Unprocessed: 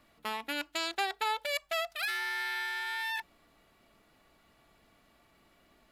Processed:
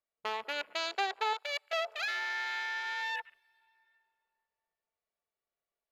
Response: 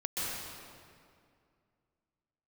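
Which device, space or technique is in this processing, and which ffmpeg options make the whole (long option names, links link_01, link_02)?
compressed reverb return: -filter_complex "[0:a]agate=range=-16dB:threshold=-57dB:ratio=16:detection=peak,asplit=2[link_01][link_02];[1:a]atrim=start_sample=2205[link_03];[link_02][link_03]afir=irnorm=-1:irlink=0,acompressor=threshold=-41dB:ratio=12,volume=-8dB[link_04];[link_01][link_04]amix=inputs=2:normalize=0,asettb=1/sr,asplit=3[link_05][link_06][link_07];[link_05]atrim=end=1.334[link_08];[link_06]atrim=start=1.33:end=1.73,asetpts=PTS-STARTPTS,afade=type=in:duration=0.004:curve=qsin,afade=type=out:start_time=0.396:duration=0.004:curve=qsin,highpass=frequency=1200:poles=1[link_09];[link_07]atrim=start=1.726[link_10];[link_08][link_09]acrossfade=duration=0.004:curve1=hsin:curve2=qsin[link_11];[link_11][link_10]acrossfade=duration=0.004:curve1=qsin:curve2=hsin,afwtdn=0.00631,lowshelf=frequency=360:width_type=q:width=3:gain=-6.5,volume=-1.5dB"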